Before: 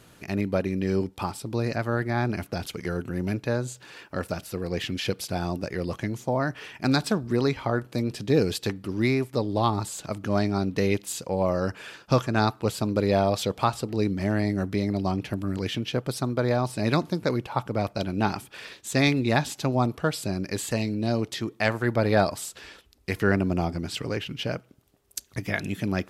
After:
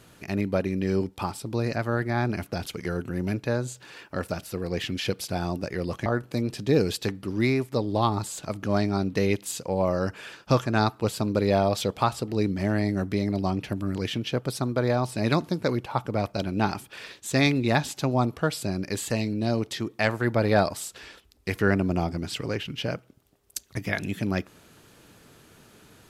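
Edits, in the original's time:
0:06.06–0:07.67: remove

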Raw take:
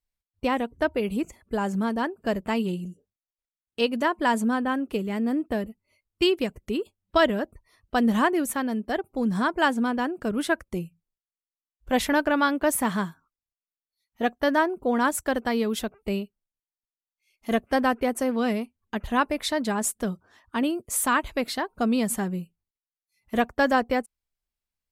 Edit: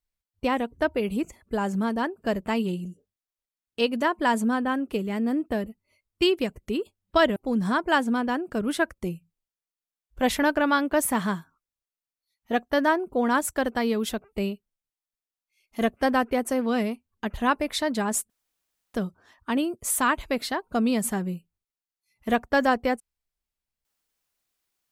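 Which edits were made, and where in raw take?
0:07.36–0:09.06: remove
0:20.00: splice in room tone 0.64 s

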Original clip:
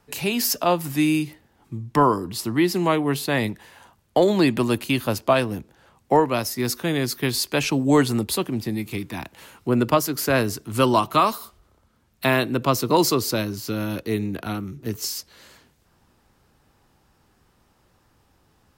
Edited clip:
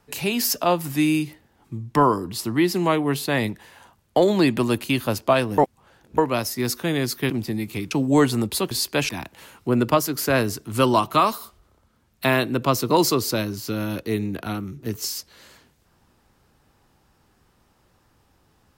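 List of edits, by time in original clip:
0:05.58–0:06.18: reverse
0:07.30–0:07.68: swap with 0:08.48–0:09.09

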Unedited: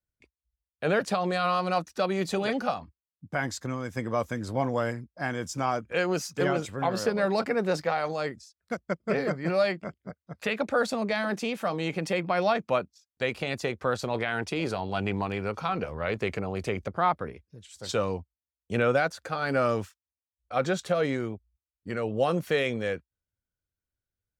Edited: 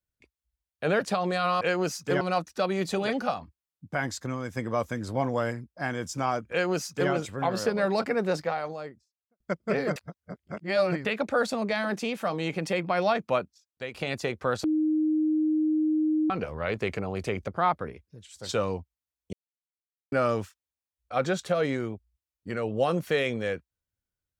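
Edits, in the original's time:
0:05.91–0:06.51: duplicate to 0:01.61
0:07.59–0:08.80: fade out and dull
0:09.36–0:10.45: reverse
0:12.79–0:13.34: fade out, to −10.5 dB
0:14.04–0:15.70: beep over 310 Hz −21.5 dBFS
0:18.73–0:19.52: silence

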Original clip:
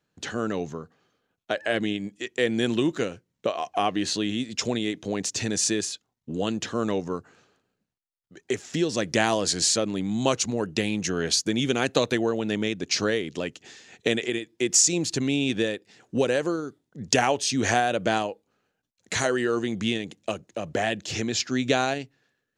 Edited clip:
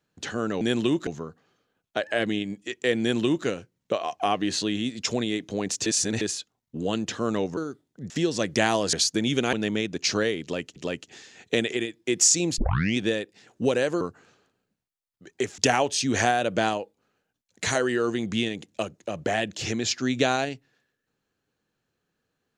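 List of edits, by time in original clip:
0:02.54–0:03.00: duplicate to 0:00.61
0:05.40–0:05.75: reverse
0:07.11–0:08.68: swap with 0:16.54–0:17.07
0:09.51–0:11.25: remove
0:11.85–0:12.40: remove
0:13.29–0:13.63: repeat, 2 plays
0:15.11: tape start 0.40 s

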